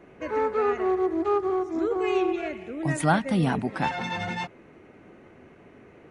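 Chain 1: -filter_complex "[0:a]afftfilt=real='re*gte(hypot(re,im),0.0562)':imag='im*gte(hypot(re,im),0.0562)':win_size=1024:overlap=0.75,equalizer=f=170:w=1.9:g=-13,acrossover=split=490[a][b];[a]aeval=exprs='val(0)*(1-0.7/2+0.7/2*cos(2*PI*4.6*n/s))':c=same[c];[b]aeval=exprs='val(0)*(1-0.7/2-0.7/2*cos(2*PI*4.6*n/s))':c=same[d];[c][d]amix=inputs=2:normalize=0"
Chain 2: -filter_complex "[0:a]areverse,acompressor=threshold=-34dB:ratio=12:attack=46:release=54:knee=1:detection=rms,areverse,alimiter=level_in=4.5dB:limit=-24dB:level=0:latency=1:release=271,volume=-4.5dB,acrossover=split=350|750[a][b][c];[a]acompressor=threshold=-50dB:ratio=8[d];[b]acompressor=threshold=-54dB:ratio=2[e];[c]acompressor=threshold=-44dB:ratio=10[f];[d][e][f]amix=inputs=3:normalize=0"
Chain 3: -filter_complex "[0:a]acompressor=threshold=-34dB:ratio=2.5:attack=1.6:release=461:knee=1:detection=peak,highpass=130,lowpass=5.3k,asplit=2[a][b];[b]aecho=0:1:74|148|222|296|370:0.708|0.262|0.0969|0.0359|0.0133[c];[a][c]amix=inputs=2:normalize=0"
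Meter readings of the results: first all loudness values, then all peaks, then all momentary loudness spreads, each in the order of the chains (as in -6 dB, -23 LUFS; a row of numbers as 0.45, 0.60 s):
-31.5, -45.0, -34.5 LUFS; -11.5, -30.5, -20.5 dBFS; 8, 9, 17 LU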